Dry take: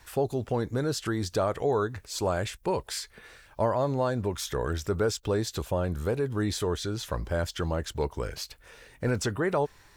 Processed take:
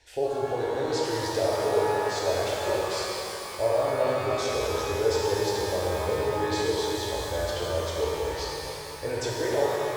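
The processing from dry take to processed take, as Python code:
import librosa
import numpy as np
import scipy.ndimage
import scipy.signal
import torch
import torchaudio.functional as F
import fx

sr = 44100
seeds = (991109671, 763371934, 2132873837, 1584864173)

y = scipy.signal.sosfilt(scipy.signal.butter(2, 5900.0, 'lowpass', fs=sr, output='sos'), x)
y = fx.low_shelf(y, sr, hz=250.0, db=-8.0)
y = fx.fixed_phaser(y, sr, hz=490.0, stages=4)
y = fx.rev_shimmer(y, sr, seeds[0], rt60_s=3.3, semitones=12, shimmer_db=-8, drr_db=-5.0)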